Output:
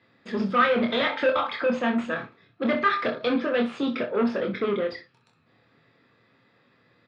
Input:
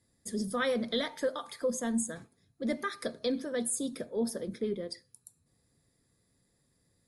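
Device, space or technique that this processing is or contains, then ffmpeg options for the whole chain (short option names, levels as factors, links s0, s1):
overdrive pedal into a guitar cabinet: -filter_complex "[0:a]asettb=1/sr,asplit=3[s0][s1][s2];[s0]atrim=end=1.054[s3];[s1]atrim=start=1.05:end=1.49,asetpts=PTS-STARTPTS,afade=t=in:d=0.004:c=qsin,afade=t=out:st=0.436:d=0.004:c=qsin,aecho=1:1:3.8:0.57,atrim=end_sample=19404[s4];[s2]atrim=start=1.486[s5];[s3][s4]acrossfade=d=0.004:c1=hsin:c2=qsin[s6];[s6][s5]acrossfade=d=0.004:c1=qsin:c2=hsin,asplit=2[s7][s8];[s8]highpass=f=720:p=1,volume=14.1,asoftclip=type=tanh:threshold=0.133[s9];[s7][s9]amix=inputs=2:normalize=0,lowpass=f=3700:p=1,volume=0.501,highpass=98,equalizer=f=110:t=q:w=4:g=7,equalizer=f=240:t=q:w=4:g=3,equalizer=f=1300:t=q:w=4:g=7,equalizer=f=2600:t=q:w=4:g=6,lowpass=f=3500:w=0.5412,lowpass=f=3500:w=1.3066,aecho=1:1:25|63:0.596|0.266"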